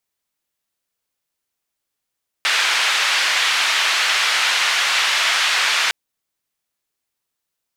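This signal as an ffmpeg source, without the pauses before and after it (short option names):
-f lavfi -i "anoisesrc=c=white:d=3.46:r=44100:seed=1,highpass=f=1300,lowpass=f=3200,volume=-3dB"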